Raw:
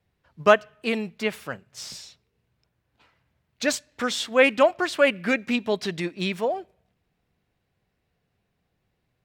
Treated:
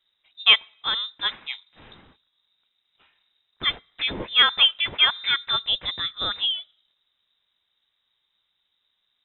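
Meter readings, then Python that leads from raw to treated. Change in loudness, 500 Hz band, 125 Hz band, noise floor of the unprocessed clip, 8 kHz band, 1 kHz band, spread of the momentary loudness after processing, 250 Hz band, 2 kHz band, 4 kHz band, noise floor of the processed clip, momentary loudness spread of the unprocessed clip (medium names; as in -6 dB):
+2.5 dB, -19.5 dB, -7.5 dB, -76 dBFS, under -40 dB, -3.0 dB, 11 LU, -16.5 dB, 0.0 dB, +14.5 dB, -75 dBFS, 17 LU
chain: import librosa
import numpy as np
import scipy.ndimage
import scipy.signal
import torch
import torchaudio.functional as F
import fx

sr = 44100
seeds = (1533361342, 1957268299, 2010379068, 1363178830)

y = fx.freq_invert(x, sr, carrier_hz=3800)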